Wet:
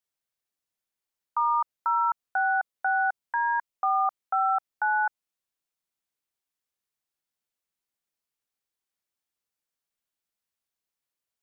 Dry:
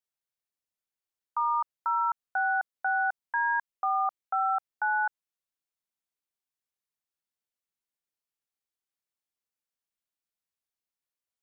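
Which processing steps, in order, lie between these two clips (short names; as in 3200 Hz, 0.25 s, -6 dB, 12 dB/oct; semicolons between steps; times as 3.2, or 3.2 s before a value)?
dynamic EQ 1700 Hz, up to -6 dB, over -46 dBFS, Q 6.7; gain +3 dB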